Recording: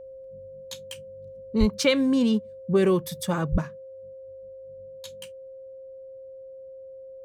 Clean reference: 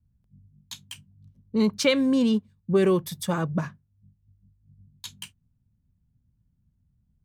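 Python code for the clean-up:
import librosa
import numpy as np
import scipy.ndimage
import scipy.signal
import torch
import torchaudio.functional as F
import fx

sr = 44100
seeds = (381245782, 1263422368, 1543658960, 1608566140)

y = fx.notch(x, sr, hz=530.0, q=30.0)
y = fx.highpass(y, sr, hz=140.0, slope=24, at=(1.59, 1.71), fade=0.02)
y = fx.highpass(y, sr, hz=140.0, slope=24, at=(3.51, 3.63), fade=0.02)
y = fx.fix_level(y, sr, at_s=3.62, step_db=4.5)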